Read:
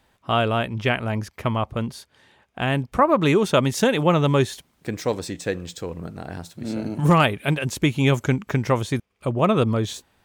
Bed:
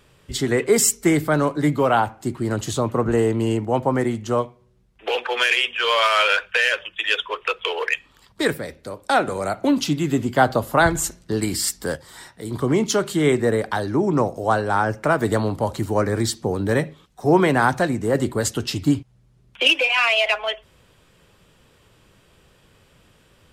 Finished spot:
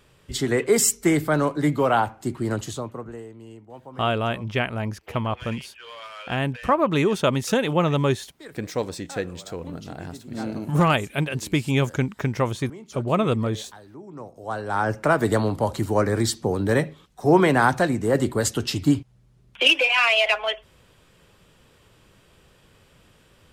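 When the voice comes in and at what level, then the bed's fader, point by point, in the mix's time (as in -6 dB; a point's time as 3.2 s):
3.70 s, -2.5 dB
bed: 2.54 s -2 dB
3.29 s -22 dB
14.08 s -22 dB
14.91 s -0.5 dB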